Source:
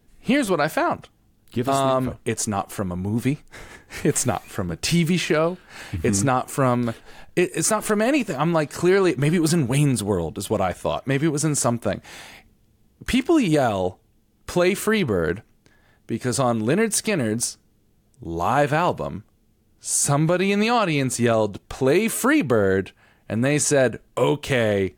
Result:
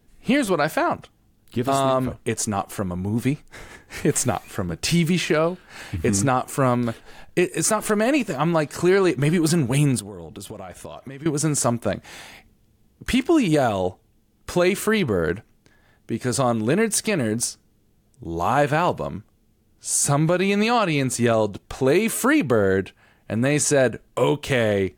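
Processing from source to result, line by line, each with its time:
0:09.99–0:11.26: downward compressor 20 to 1, threshold −31 dBFS

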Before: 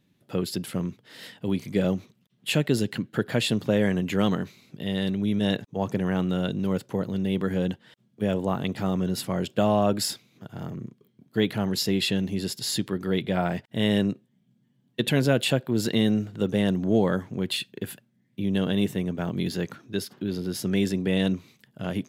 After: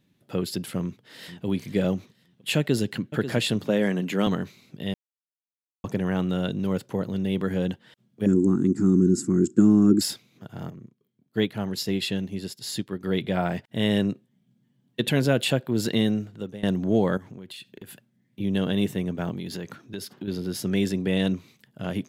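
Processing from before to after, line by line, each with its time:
0:00.80–0:01.45: delay throw 480 ms, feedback 30%, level −13.5 dB
0:02.58–0:03.06: delay throw 540 ms, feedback 15%, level −11 dB
0:03.64–0:04.27: high-pass filter 150 Hz 24 dB per octave
0:04.94–0:05.84: silence
0:08.26–0:10.01: drawn EQ curve 130 Hz 0 dB, 200 Hz +8 dB, 350 Hz +15 dB, 590 Hz −26 dB, 1,400 Hz −4 dB, 3,200 Hz −25 dB, 5,000 Hz −6 dB, 7,500 Hz +11 dB, 13,000 Hz −21 dB
0:10.70–0:13.04: expander for the loud parts, over −43 dBFS
0:16.01–0:16.63: fade out, to −19.5 dB
0:17.17–0:18.40: downward compressor, threshold −38 dBFS
0:19.31–0:20.28: downward compressor, threshold −29 dBFS
0:20.86–0:21.30: floating-point word with a short mantissa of 8 bits

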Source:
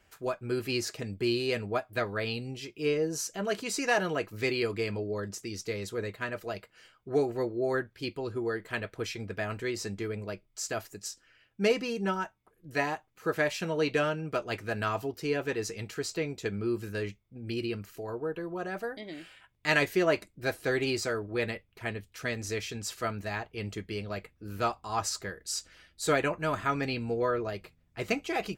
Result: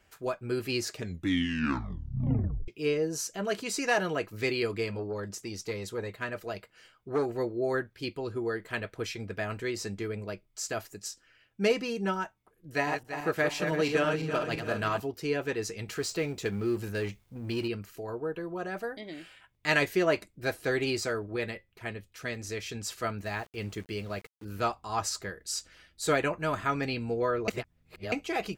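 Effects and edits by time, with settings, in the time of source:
0:00.92: tape stop 1.76 s
0:04.85–0:07.26: saturating transformer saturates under 600 Hz
0:12.70–0:15.00: feedback delay that plays each chunk backwards 169 ms, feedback 62%, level −6 dB
0:15.88–0:17.68: mu-law and A-law mismatch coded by mu
0:21.36–0:22.66: tuned comb filter 180 Hz, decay 0.2 s, mix 30%
0:23.25–0:24.45: centre clipping without the shift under −50 dBFS
0:27.48–0:28.12: reverse

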